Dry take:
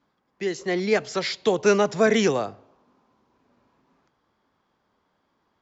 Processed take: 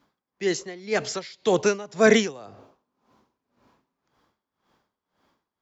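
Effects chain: high shelf 4300 Hz +5.5 dB; dB-linear tremolo 1.9 Hz, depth 22 dB; gain +4.5 dB

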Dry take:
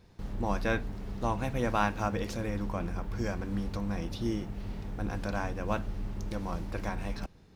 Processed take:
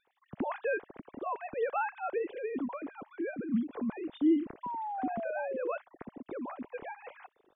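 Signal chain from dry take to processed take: sine-wave speech; low shelf 480 Hz +11 dB; notch 630 Hz, Q 17; 2.73–3.29 low shelf 220 Hz -8.5 dB; 4.63–5.72 painted sound fall 470–1000 Hz -28 dBFS; gain -8.5 dB

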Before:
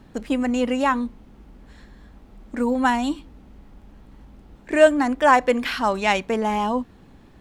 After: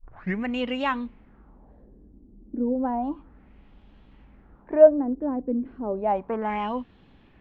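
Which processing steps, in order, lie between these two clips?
tape start at the beginning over 0.44 s; LFO low-pass sine 0.32 Hz 300–3300 Hz; gain -6.5 dB

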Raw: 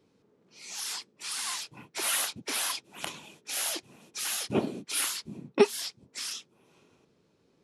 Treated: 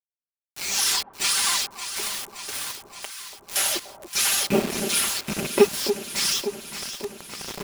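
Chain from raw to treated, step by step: rattling part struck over -40 dBFS, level -31 dBFS; recorder AGC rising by 13 dB/s; HPF 140 Hz 12 dB/oct; comb 5.1 ms, depth 81%; in parallel at +1.5 dB: compressor 10:1, threshold -38 dBFS, peak gain reduction 26.5 dB; 1.68–3.56 on the sum: resonator 210 Hz, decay 0.47 s, harmonics all, mix 80%; bit-crush 5-bit; on a send: echo with dull and thin repeats by turns 0.286 s, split 1000 Hz, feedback 80%, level -9 dB

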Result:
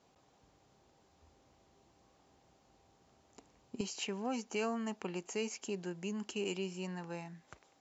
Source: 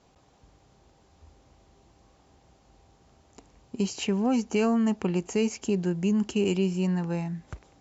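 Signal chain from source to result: HPF 160 Hz 6 dB/oct, from 3.81 s 620 Hz; gain -6 dB

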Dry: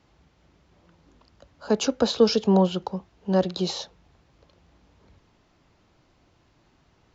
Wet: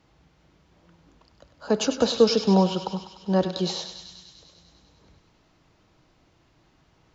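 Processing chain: on a send: thinning echo 99 ms, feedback 76%, high-pass 770 Hz, level -9.5 dB; on the sum: shoebox room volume 3100 m³, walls furnished, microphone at 0.59 m

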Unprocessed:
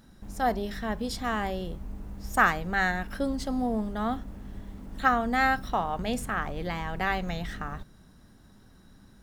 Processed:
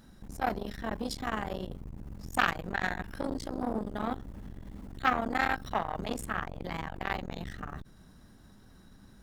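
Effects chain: core saturation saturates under 1600 Hz

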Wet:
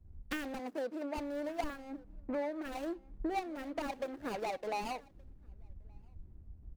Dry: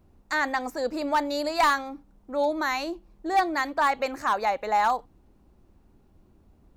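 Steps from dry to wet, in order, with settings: median filter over 41 samples; 0.59–1.17 HPF 190 Hz 12 dB/oct; compressor 16:1, threshold -44 dBFS, peak gain reduction 25 dB; echo 1.173 s -19 dB; three-band expander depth 100%; gain +8.5 dB

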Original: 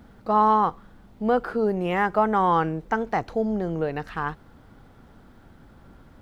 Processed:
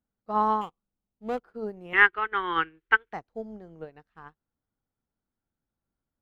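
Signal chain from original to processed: 0.61–1.39 median filter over 25 samples; 1.93–3.13 EQ curve 110 Hz 0 dB, 230 Hz -18 dB, 350 Hz +5 dB, 640 Hz -15 dB, 1500 Hz +12 dB, 3200 Hz +14 dB, 5900 Hz -13 dB; upward expander 2.5:1, over -39 dBFS

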